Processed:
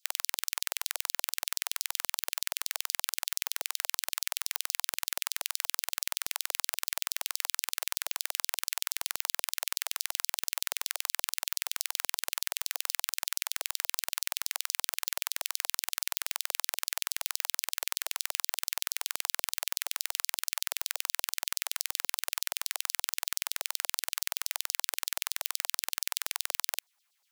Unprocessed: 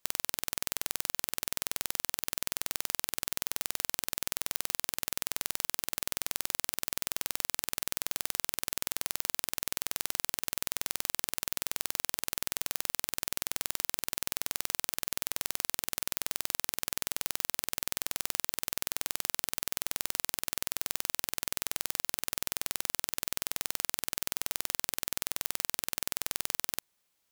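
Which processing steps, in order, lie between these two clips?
LFO high-pass saw down 8.3 Hz 600–5400 Hz

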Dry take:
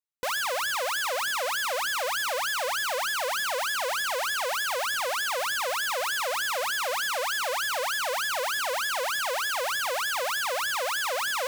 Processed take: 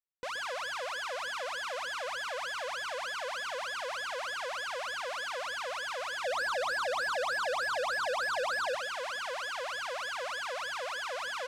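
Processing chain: 6.24–8.75 s: square wave that keeps the level; distance through air 72 m; band-stop 840 Hz, Q 12; delay 124 ms -9.5 dB; trim -7.5 dB

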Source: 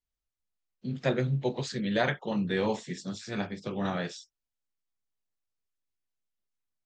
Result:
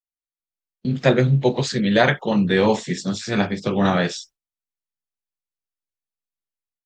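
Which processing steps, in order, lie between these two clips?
gate with hold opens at -39 dBFS; level rider gain up to 13 dB

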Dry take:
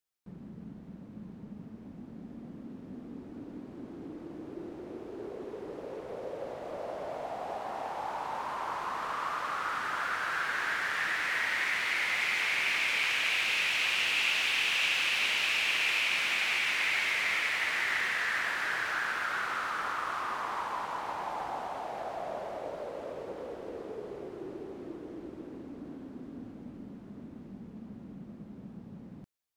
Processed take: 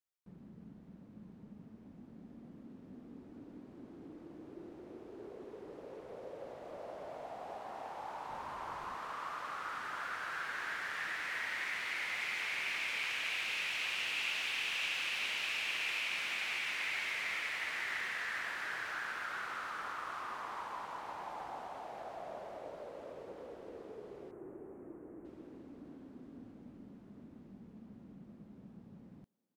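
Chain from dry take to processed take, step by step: 8.29–8.95 s: bass shelf 130 Hz +12 dB; 24.31–25.25 s: Butterworth band-stop 4.1 kHz, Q 0.58; speakerphone echo 380 ms, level -25 dB; trim -8 dB

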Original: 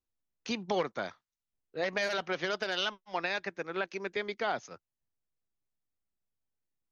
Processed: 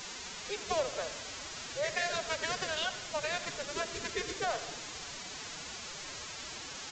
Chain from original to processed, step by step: local Wiener filter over 25 samples; steep high-pass 250 Hz 72 dB/octave; word length cut 6-bit, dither triangular; formant-preserving pitch shift +9.5 st; on a send at -11.5 dB: reverberation RT60 0.95 s, pre-delay 81 ms; on the sum: resampled via 16 kHz

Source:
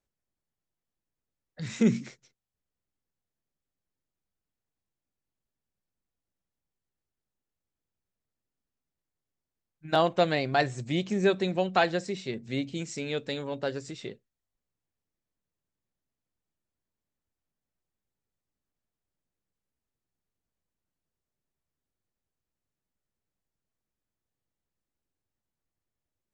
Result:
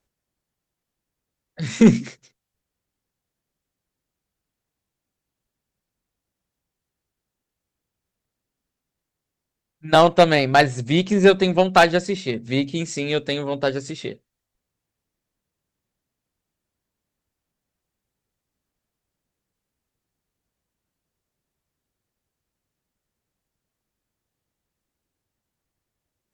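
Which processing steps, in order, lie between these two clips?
Chebyshev shaper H 3 -24 dB, 6 -29 dB, 7 -29 dB, 8 -37 dB, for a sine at -9.5 dBFS; sine folder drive 5 dB, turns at -8 dBFS; trim +4.5 dB

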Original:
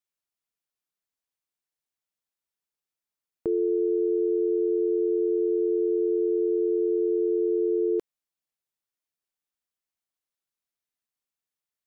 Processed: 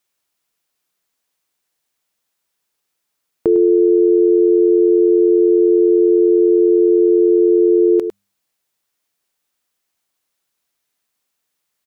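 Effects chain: bass shelf 110 Hz -6.5 dB; de-hum 100.2 Hz, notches 2; on a send: delay 103 ms -11.5 dB; on the sum: loudness maximiser +20.5 dB; trim -5 dB

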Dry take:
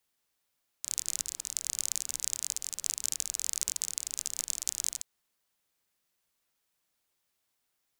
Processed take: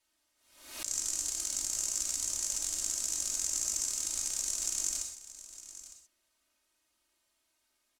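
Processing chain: hard clipper -18 dBFS, distortion -8 dB; low-pass 11 kHz 12 dB/octave; comb 3.2 ms, depth 87%; delay 908 ms -15 dB; gated-style reverb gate 150 ms flat, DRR 1.5 dB; swell ahead of each attack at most 82 dB/s

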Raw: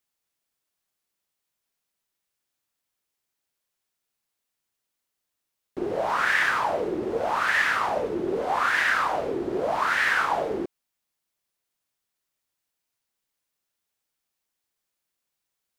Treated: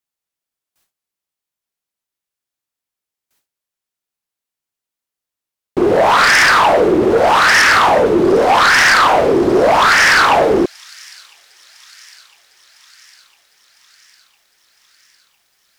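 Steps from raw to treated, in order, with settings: sine folder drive 12 dB, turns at -8.5 dBFS; feedback echo behind a high-pass 1005 ms, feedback 63%, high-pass 4.3 kHz, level -17.5 dB; gate with hold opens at -54 dBFS; trim +2 dB

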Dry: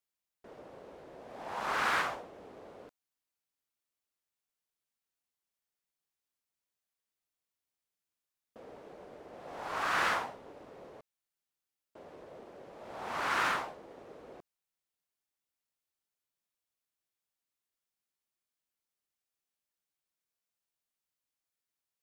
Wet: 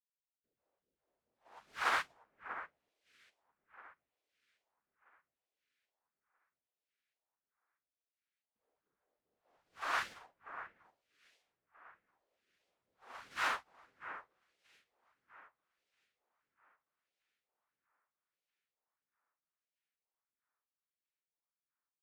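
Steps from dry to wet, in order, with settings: phase shifter stages 2, 2.5 Hz, lowest notch 110–1100 Hz; echo whose repeats swap between lows and highs 640 ms, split 2.1 kHz, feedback 75%, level -4 dB; vibrato 3 Hz 68 cents; upward expansion 2.5:1, over -49 dBFS; trim -1.5 dB

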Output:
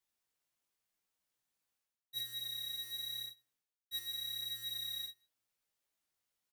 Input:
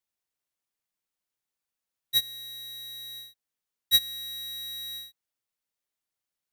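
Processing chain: reverse; compression 6:1, threshold -44 dBFS, peak gain reduction 23.5 dB; reverse; echo from a far wall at 26 m, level -27 dB; chorus 0.87 Hz, delay 16 ms, depth 3.4 ms; trim +4.5 dB

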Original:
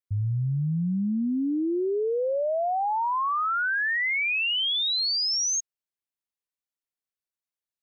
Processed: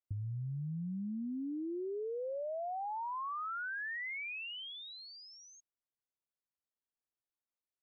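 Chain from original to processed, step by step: low-pass 1.2 kHz 12 dB/octave; compression, threshold -36 dBFS, peak gain reduction 10.5 dB; trim -2.5 dB

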